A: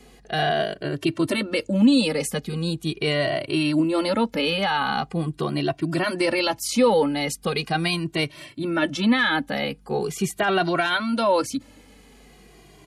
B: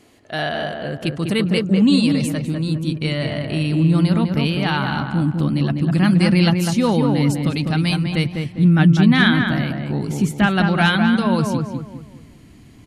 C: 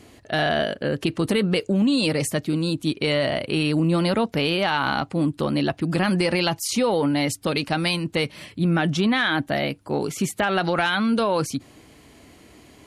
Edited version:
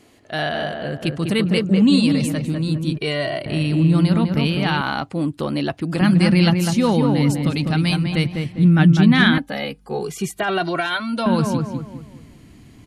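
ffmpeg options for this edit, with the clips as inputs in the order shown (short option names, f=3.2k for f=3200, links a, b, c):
-filter_complex "[0:a]asplit=2[a][b];[1:a]asplit=4[c][d][e][f];[c]atrim=end=2.982[g];[a]atrim=start=2.978:end=3.462[h];[d]atrim=start=3.458:end=4.812[i];[2:a]atrim=start=4.808:end=6.012[j];[e]atrim=start=6.008:end=9.382[k];[b]atrim=start=9.378:end=11.262[l];[f]atrim=start=11.258[m];[g][h]acrossfade=d=0.004:c1=hsin:c2=hsin[n];[n][i]acrossfade=d=0.004:c1=hsin:c2=hsin[o];[o][j]acrossfade=d=0.004:c1=hsin:c2=hsin[p];[p][k]acrossfade=d=0.004:c1=hsin:c2=hsin[q];[q][l]acrossfade=d=0.004:c1=hsin:c2=hsin[r];[r][m]acrossfade=d=0.004:c1=hsin:c2=hsin"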